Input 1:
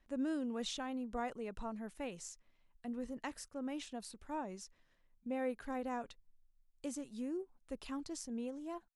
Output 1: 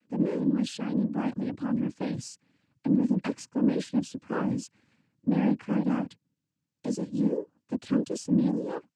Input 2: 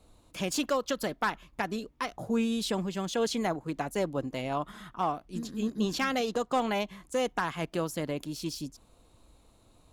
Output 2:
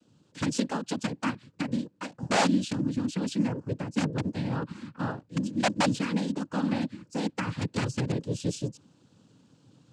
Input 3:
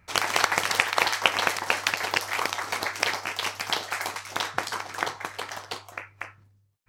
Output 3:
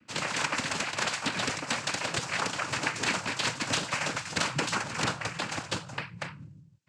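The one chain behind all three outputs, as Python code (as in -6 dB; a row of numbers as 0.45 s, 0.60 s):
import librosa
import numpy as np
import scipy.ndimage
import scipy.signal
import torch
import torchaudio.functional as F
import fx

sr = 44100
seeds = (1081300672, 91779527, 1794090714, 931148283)

y = fx.low_shelf_res(x, sr, hz=320.0, db=10.5, q=1.5)
y = fx.rider(y, sr, range_db=4, speed_s=2.0)
y = (np.mod(10.0 ** (13.0 / 20.0) * y + 1.0, 2.0) - 1.0) / 10.0 ** (13.0 / 20.0)
y = fx.noise_vocoder(y, sr, seeds[0], bands=8)
y = librosa.util.normalize(y) * 10.0 ** (-12 / 20.0)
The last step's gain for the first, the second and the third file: +5.5 dB, -6.0 dB, -1.0 dB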